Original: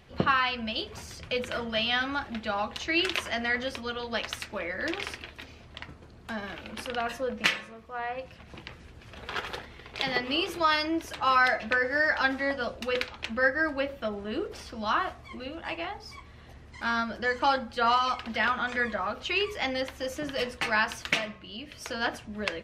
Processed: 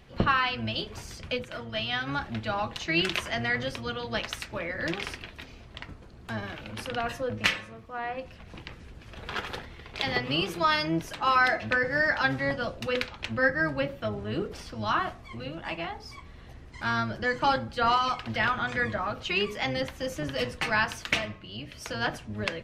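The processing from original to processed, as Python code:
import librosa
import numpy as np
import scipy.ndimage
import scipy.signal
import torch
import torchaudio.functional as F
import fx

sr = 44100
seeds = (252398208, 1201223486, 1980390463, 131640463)

y = fx.octave_divider(x, sr, octaves=1, level_db=0.0)
y = fx.upward_expand(y, sr, threshold_db=-36.0, expansion=1.5, at=(1.34, 2.06), fade=0.02)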